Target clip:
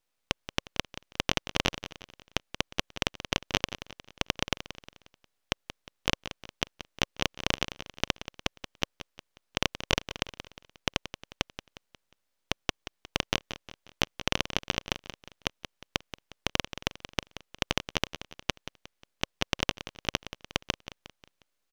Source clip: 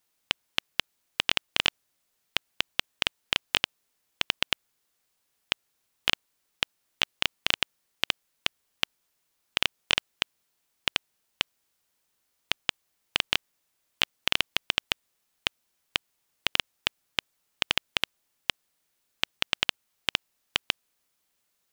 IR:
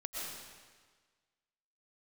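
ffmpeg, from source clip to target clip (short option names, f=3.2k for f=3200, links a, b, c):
-filter_complex "[0:a]equalizer=f=540:t=o:w=0.31:g=4.5,aeval=exprs='max(val(0),0)':c=same,highshelf=f=7.4k:g=-9,asplit=2[a][b];[b]aecho=0:1:179|358|537|716:0.237|0.102|0.0438|0.0189[c];[a][c]amix=inputs=2:normalize=0"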